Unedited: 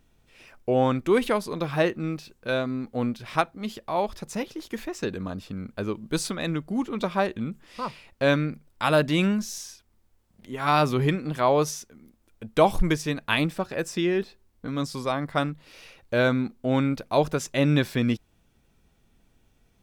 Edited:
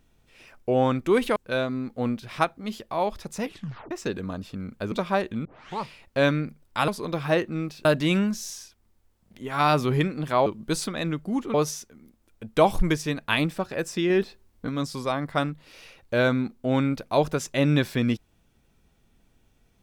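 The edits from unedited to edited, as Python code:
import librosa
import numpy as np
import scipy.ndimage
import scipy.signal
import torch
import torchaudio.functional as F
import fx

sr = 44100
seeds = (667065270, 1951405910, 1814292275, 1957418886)

y = fx.edit(x, sr, fx.move(start_s=1.36, length_s=0.97, to_s=8.93),
    fx.tape_stop(start_s=4.4, length_s=0.48),
    fx.move(start_s=5.89, length_s=1.08, to_s=11.54),
    fx.tape_start(start_s=7.5, length_s=0.38),
    fx.clip_gain(start_s=14.1, length_s=0.59, db=3.5), tone=tone)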